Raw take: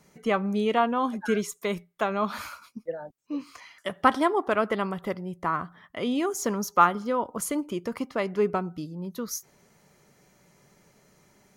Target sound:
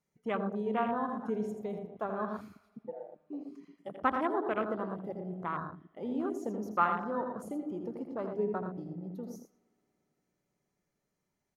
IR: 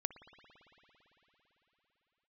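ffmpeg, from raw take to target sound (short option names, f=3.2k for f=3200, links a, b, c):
-filter_complex "[0:a]asplit=2[a][b];[b]adelay=115,lowpass=f=1.3k:p=1,volume=-6dB,asplit=2[c][d];[d]adelay=115,lowpass=f=1.3k:p=1,volume=0.43,asplit=2[e][f];[f]adelay=115,lowpass=f=1.3k:p=1,volume=0.43,asplit=2[g][h];[h]adelay=115,lowpass=f=1.3k:p=1,volume=0.43,asplit=2[i][j];[j]adelay=115,lowpass=f=1.3k:p=1,volume=0.43[k];[a][c][e][g][i][k]amix=inputs=6:normalize=0,asplit=2[l][m];[1:a]atrim=start_sample=2205,lowshelf=f=150:g=12,adelay=82[n];[m][n]afir=irnorm=-1:irlink=0,volume=-7dB[o];[l][o]amix=inputs=2:normalize=0,afwtdn=0.0398,volume=-9dB"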